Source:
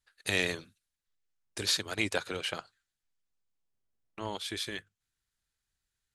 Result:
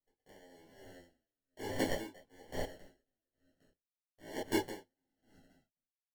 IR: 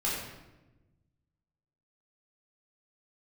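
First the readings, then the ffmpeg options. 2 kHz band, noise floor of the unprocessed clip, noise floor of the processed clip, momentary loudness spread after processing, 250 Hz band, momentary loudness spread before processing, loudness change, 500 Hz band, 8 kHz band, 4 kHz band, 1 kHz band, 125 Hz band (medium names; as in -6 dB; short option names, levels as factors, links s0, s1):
-11.5 dB, under -85 dBFS, under -85 dBFS, 22 LU, 0.0 dB, 13 LU, -6.5 dB, -2.0 dB, -11.5 dB, -14.5 dB, -3.0 dB, -5.5 dB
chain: -filter_complex "[0:a]highpass=210,agate=range=0.282:threshold=0.00158:ratio=16:detection=peak,lowpass=f=1100:w=0.5412,lowpass=f=1100:w=1.3066,acrossover=split=840[s0][s1];[s0]alimiter=level_in=2.82:limit=0.0631:level=0:latency=1:release=193,volume=0.355[s2];[s2][s1]amix=inputs=2:normalize=0,acrusher=samples=35:mix=1:aa=0.000001,acontrast=84,asoftclip=type=hard:threshold=0.0668,asplit=5[s3][s4][s5][s6][s7];[s4]adelay=270,afreqshift=-47,volume=0.0631[s8];[s5]adelay=540,afreqshift=-94,volume=0.0347[s9];[s6]adelay=810,afreqshift=-141,volume=0.0191[s10];[s7]adelay=1080,afreqshift=-188,volume=0.0105[s11];[s3][s8][s9][s10][s11]amix=inputs=5:normalize=0[s12];[1:a]atrim=start_sample=2205,atrim=end_sample=3969,asetrate=66150,aresample=44100[s13];[s12][s13]afir=irnorm=-1:irlink=0,aeval=exprs='val(0)*pow(10,-35*(0.5-0.5*cos(2*PI*1.1*n/s))/20)':c=same,volume=1.68"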